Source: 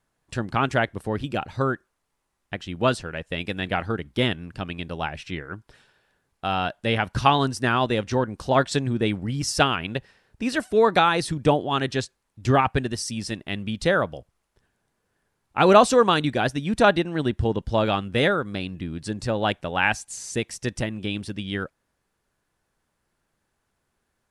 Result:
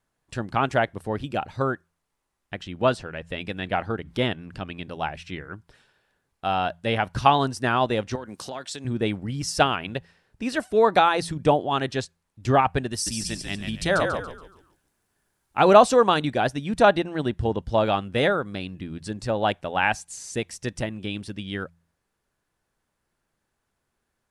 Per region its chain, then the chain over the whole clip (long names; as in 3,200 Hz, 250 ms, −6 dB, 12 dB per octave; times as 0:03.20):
0:02.62–0:04.91: high-shelf EQ 7,700 Hz −7.5 dB + upward compression, threshold −30 dBFS
0:08.15–0:08.85: high-pass filter 170 Hz + high-shelf EQ 2,800 Hz +10.5 dB + downward compressor 12 to 1, threshold −28 dBFS
0:12.92–0:15.60: high-shelf EQ 6,400 Hz +10.5 dB + notch filter 500 Hz, Q 6.1 + echo with shifted repeats 141 ms, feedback 37%, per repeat −51 Hz, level −5 dB
whole clip: dynamic equaliser 720 Hz, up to +5 dB, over −33 dBFS, Q 1.3; hum removal 84.38 Hz, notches 2; level −2.5 dB